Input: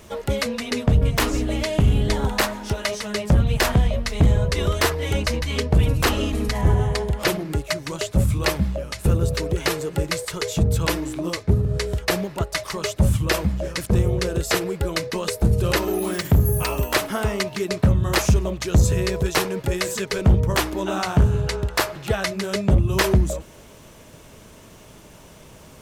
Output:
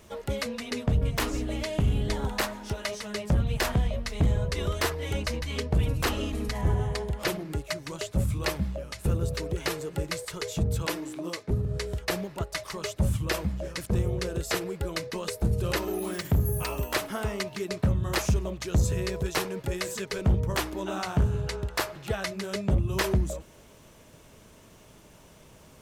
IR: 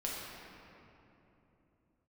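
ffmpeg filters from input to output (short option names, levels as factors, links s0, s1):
-filter_complex "[0:a]asettb=1/sr,asplit=3[s0][s1][s2];[s0]atrim=end=10.824[s3];[s1]atrim=start=10.82:end=11.51,asetpts=PTS-STARTPTS,afade=t=in:d=0.004:c=qsin,afade=t=out:st=0.686:d=0.004:c=qsin,highpass=180[s4];[s2]atrim=start=11.506[s5];[s3][s4]acrossfade=d=0.004:c1=hsin:c2=qsin[s6];[s6][s5]acrossfade=d=0.004:c1=qsin:c2=hsin,volume=0.422"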